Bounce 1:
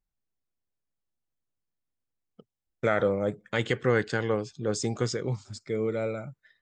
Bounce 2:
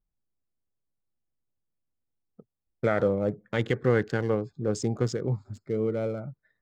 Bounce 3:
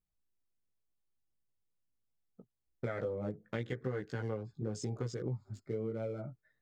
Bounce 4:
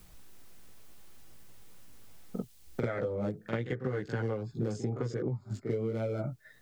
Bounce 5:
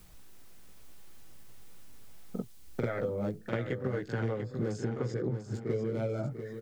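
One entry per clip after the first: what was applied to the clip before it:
adaptive Wiener filter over 15 samples; tilt shelving filter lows +3 dB, about 650 Hz
multi-voice chorus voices 2, 0.76 Hz, delay 17 ms, depth 1.6 ms; downward compressor, threshold −33 dBFS, peak gain reduction 14 dB; level −1 dB
echo ahead of the sound 44 ms −12 dB; multiband upward and downward compressor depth 100%; level +4 dB
repeating echo 693 ms, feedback 35%, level −9 dB

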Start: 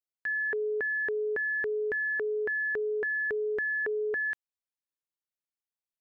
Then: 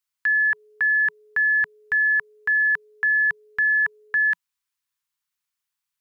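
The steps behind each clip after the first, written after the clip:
drawn EQ curve 170 Hz 0 dB, 420 Hz −30 dB, 990 Hz +6 dB
level +5 dB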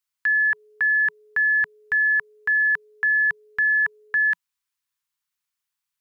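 no processing that can be heard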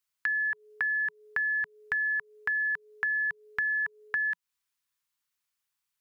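downward compressor 6 to 1, threshold −28 dBFS, peak gain reduction 9 dB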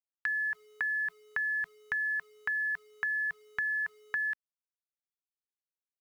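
bit reduction 10 bits
level −3 dB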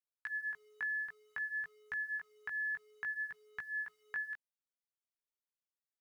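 chorus effect 0.56 Hz, delay 16.5 ms, depth 2.7 ms
level −5 dB

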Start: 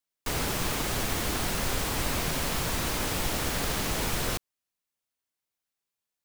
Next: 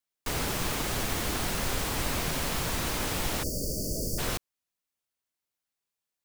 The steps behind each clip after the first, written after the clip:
time-frequency box erased 0:03.43–0:04.18, 650–4,400 Hz
level −1 dB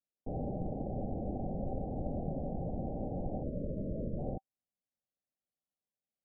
Chebyshev low-pass with heavy ripple 800 Hz, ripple 6 dB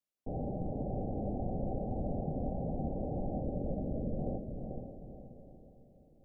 feedback delay with all-pass diffusion 469 ms, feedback 43%, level −5 dB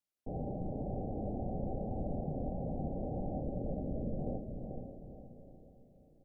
double-tracking delay 33 ms −11 dB
level −2 dB

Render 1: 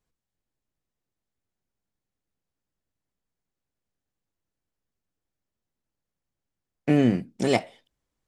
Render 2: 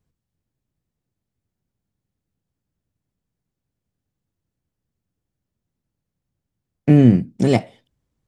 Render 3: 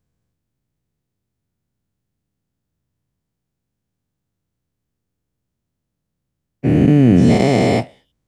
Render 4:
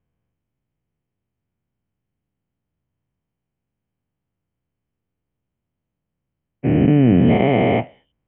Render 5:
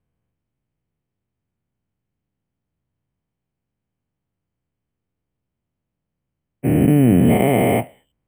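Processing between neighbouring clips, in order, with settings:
parametric band 110 Hz +13.5 dB 3 octaves
every bin's largest magnitude spread in time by 480 ms; level −3.5 dB
Chebyshev low-pass with heavy ripple 3,200 Hz, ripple 3 dB
bad sample-rate conversion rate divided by 4×, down filtered, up hold

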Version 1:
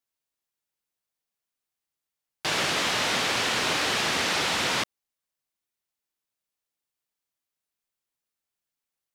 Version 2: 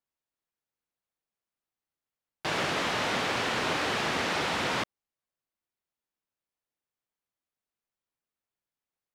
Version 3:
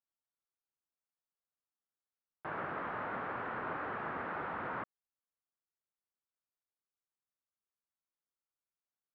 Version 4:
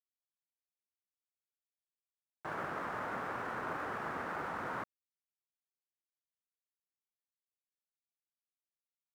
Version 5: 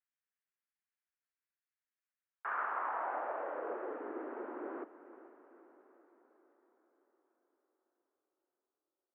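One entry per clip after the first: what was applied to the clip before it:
high-shelf EQ 2,800 Hz −11 dB
transistor ladder low-pass 1,700 Hz, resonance 40%; level −3 dB
dead-zone distortion −56.5 dBFS; level +1 dB
single-sideband voice off tune +70 Hz 190–3,000 Hz; feedback delay with all-pass diffusion 451 ms, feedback 57%, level −14.5 dB; band-pass filter sweep 1,700 Hz → 350 Hz, 0:02.16–0:04.07; level +7 dB

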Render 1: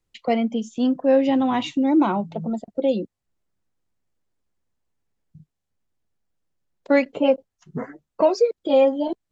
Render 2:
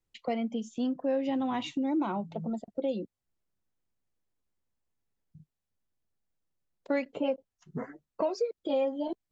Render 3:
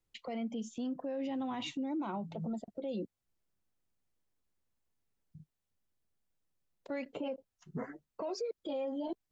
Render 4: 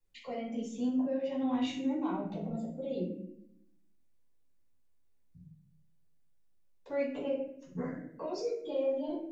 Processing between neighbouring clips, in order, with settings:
downward compressor 2 to 1, threshold −23 dBFS, peak gain reduction 6.5 dB; level −6.5 dB
brickwall limiter −30.5 dBFS, peak gain reduction 11.5 dB
convolution reverb RT60 0.70 s, pre-delay 4 ms, DRR −7 dB; level −8.5 dB

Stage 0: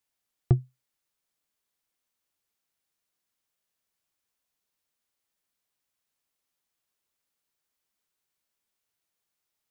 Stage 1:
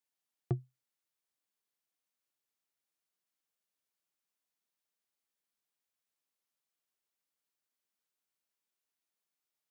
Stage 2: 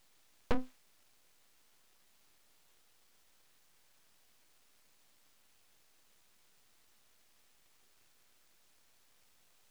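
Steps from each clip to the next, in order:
high-pass filter 150 Hz; level −7 dB
mid-hump overdrive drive 35 dB, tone 2,200 Hz, clips at −21.5 dBFS; full-wave rectification; level +3 dB

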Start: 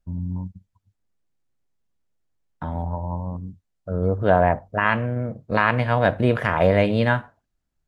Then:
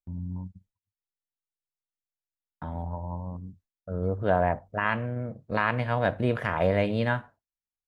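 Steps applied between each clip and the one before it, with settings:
noise gate with hold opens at −39 dBFS
level −6.5 dB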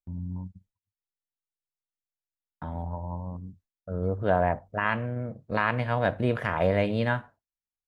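no processing that can be heard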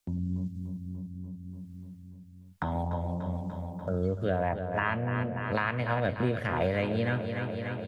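rotating-speaker cabinet horn 1 Hz
on a send: repeating echo 293 ms, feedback 60%, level −10 dB
on the sum: multiband upward and downward compressor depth 70%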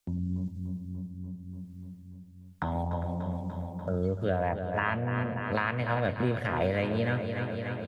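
single-tap delay 403 ms −14.5 dB

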